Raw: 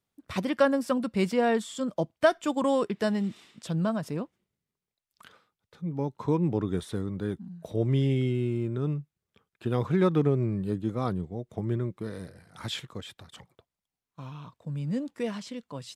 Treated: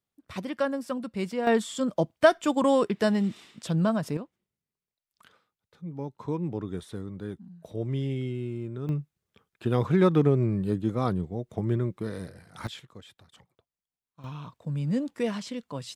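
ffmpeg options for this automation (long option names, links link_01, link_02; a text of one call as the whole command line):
ffmpeg -i in.wav -af "asetnsamples=nb_out_samples=441:pad=0,asendcmd='1.47 volume volume 3dB;4.17 volume volume -5dB;8.89 volume volume 2.5dB;12.67 volume volume -8dB;14.24 volume volume 3dB',volume=-5dB" out.wav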